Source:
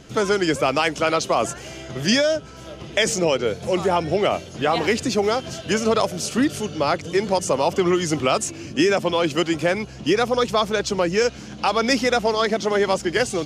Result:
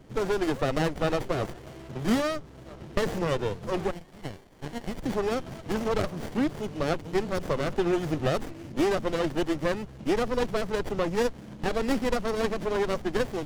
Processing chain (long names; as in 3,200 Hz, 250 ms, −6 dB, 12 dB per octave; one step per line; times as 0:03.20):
0:03.91–0:05.03: inverse Chebyshev high-pass filter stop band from 380 Hz, stop band 70 dB
windowed peak hold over 33 samples
level −5.5 dB